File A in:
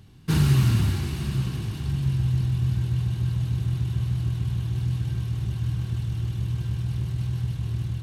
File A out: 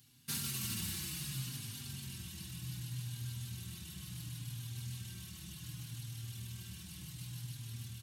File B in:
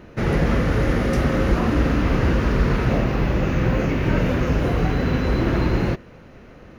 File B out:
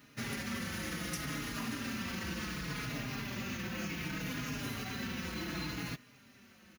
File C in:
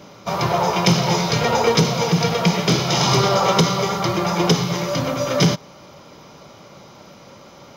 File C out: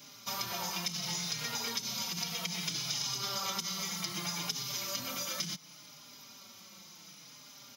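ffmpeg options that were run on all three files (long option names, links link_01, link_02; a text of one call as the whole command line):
ffmpeg -i in.wav -filter_complex "[0:a]lowshelf=frequency=320:width_type=q:width=1.5:gain=12,alimiter=limit=-2dB:level=0:latency=1:release=24,aderivative,acompressor=threshold=-36dB:ratio=5,asplit=2[link_01][link_02];[link_02]adelay=4.4,afreqshift=-0.67[link_03];[link_01][link_03]amix=inputs=2:normalize=1,volume=5.5dB" out.wav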